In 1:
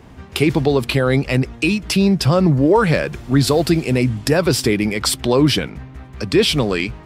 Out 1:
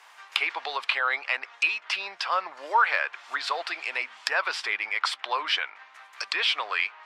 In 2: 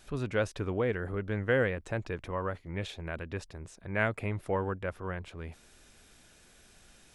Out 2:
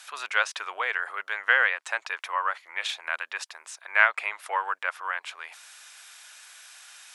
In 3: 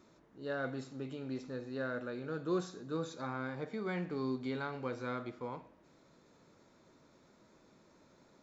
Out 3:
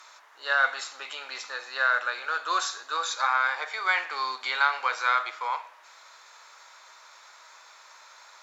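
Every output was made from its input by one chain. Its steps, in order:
HPF 940 Hz 24 dB/oct; treble ducked by the level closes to 2500 Hz, closed at -25.5 dBFS; match loudness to -27 LUFS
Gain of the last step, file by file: +0.5, +12.5, +20.0 dB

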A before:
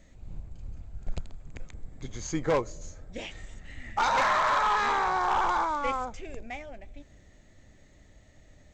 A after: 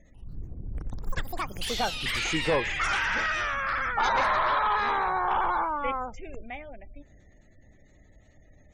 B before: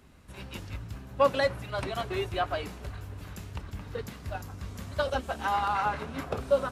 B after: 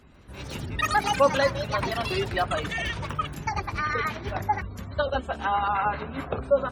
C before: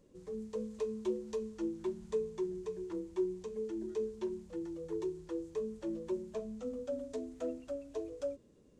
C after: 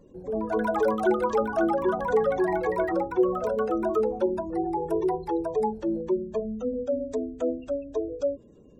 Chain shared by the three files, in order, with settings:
spectral gate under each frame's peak -30 dB strong; echoes that change speed 0.144 s, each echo +7 st, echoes 3; match loudness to -27 LUFS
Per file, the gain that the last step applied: 0.0, +3.0, +11.0 dB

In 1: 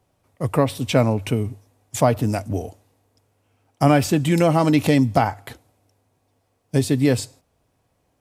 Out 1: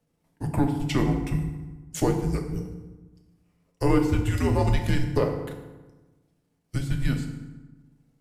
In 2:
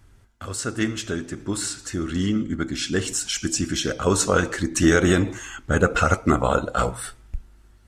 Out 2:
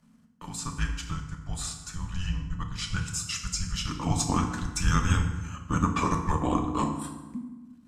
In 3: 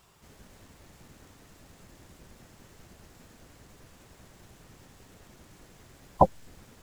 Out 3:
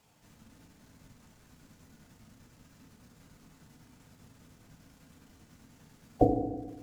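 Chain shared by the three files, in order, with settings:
transient shaper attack 0 dB, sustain -12 dB; frequency shift -270 Hz; FDN reverb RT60 1.2 s, low-frequency decay 1.3×, high-frequency decay 0.65×, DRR 2.5 dB; normalise peaks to -9 dBFS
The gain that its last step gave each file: -7.0, -7.5, -5.5 dB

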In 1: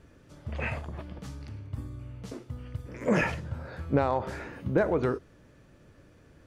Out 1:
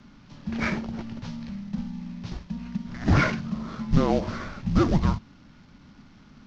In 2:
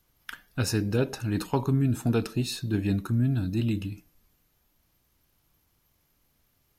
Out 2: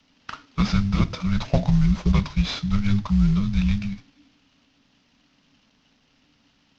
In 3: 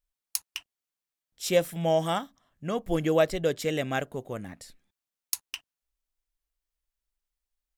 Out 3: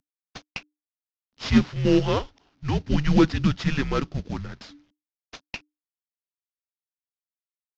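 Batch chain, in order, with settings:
CVSD 32 kbps; frequency shift -300 Hz; normalise peaks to -6 dBFS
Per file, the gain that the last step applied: +5.5, +6.5, +5.5 dB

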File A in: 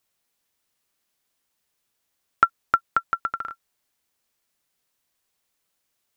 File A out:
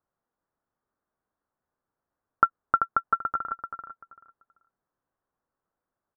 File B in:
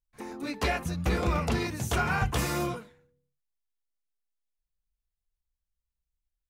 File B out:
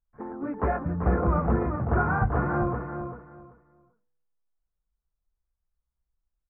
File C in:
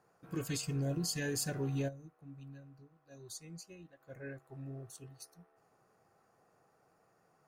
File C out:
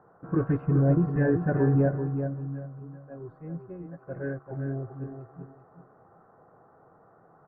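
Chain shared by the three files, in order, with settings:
steep low-pass 1500 Hz 36 dB/oct; on a send: feedback echo 0.387 s, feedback 21%, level -7.5 dB; on the sum: match loudness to -27 LUFS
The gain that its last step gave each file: -1.0, +3.5, +13.0 dB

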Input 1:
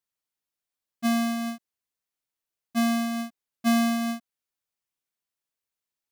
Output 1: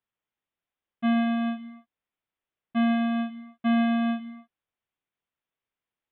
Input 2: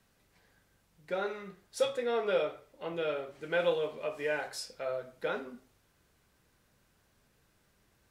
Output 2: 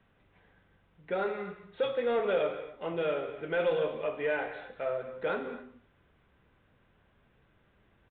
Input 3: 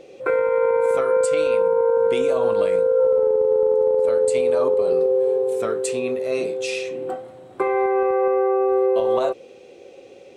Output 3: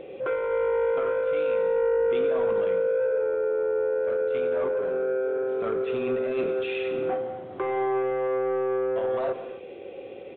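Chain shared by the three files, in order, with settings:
limiter -20.5 dBFS; soft clip -24.5 dBFS; air absorption 170 m; non-linear reverb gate 0.29 s flat, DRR 9 dB; downsampling 8000 Hz; gain +4 dB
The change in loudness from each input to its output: +0.5, +1.5, -6.5 LU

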